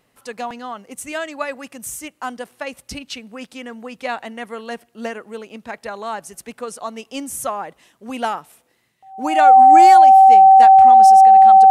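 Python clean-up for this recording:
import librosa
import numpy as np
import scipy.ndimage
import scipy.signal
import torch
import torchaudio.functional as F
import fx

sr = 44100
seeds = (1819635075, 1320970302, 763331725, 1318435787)

y = fx.notch(x, sr, hz=770.0, q=30.0)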